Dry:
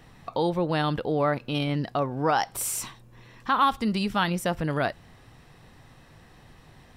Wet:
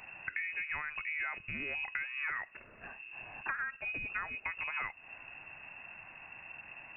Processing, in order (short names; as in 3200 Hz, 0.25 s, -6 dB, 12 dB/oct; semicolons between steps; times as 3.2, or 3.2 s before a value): bell 300 Hz -10 dB 1.6 oct; notches 50/100/150 Hz; compressor 10:1, threshold -38 dBFS, peak gain reduction 20 dB; inverted band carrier 2700 Hz; gain +3.5 dB